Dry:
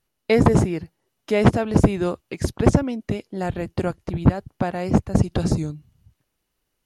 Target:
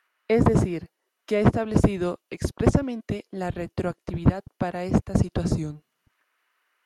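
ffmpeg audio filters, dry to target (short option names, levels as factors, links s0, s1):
-filter_complex "[0:a]bandreject=f=830:w=12,acrossover=split=310|1300|1800[s0][s1][s2][s3];[s0]aeval=exprs='sgn(val(0))*max(abs(val(0))-0.00422,0)':c=same[s4];[s2]acompressor=mode=upward:threshold=0.00316:ratio=2.5[s5];[s3]alimiter=level_in=1.33:limit=0.0631:level=0:latency=1:release=264,volume=0.75[s6];[s4][s1][s5][s6]amix=inputs=4:normalize=0,volume=0.708"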